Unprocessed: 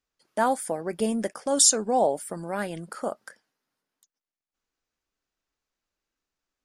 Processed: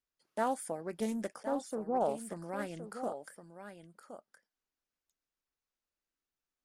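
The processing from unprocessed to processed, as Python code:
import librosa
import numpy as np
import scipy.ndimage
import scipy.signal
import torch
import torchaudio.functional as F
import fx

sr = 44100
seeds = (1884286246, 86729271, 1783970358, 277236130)

p1 = fx.savgol(x, sr, points=65, at=(1.43, 2.01))
p2 = p1 + fx.echo_single(p1, sr, ms=1067, db=-10.0, dry=0)
p3 = fx.doppler_dist(p2, sr, depth_ms=0.23)
y = p3 * librosa.db_to_amplitude(-9.0)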